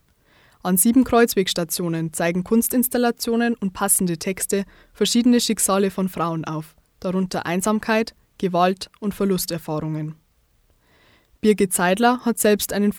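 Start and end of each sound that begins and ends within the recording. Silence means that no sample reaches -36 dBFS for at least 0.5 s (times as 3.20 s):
0.65–10.12 s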